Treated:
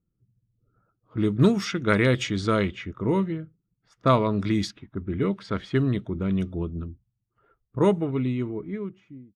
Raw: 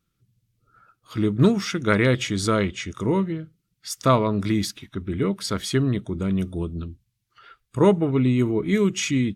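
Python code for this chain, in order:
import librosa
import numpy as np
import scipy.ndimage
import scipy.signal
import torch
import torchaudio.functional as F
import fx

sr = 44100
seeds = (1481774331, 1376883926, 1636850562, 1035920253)

y = fx.fade_out_tail(x, sr, length_s=1.88)
y = fx.env_lowpass(y, sr, base_hz=520.0, full_db=-16.5)
y = y * librosa.db_to_amplitude(-1.5)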